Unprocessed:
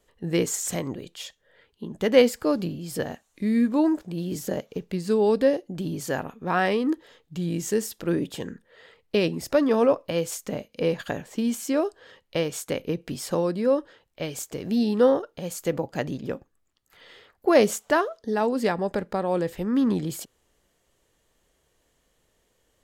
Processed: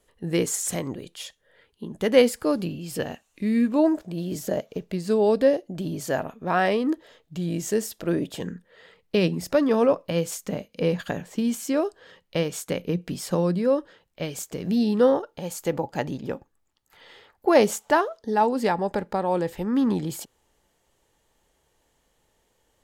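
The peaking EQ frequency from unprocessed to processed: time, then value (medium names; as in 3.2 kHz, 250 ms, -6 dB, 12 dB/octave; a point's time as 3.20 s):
peaking EQ +9 dB 0.21 oct
10 kHz
from 2.65 s 2.7 kHz
from 3.76 s 640 Hz
from 8.40 s 180 Hz
from 15.14 s 860 Hz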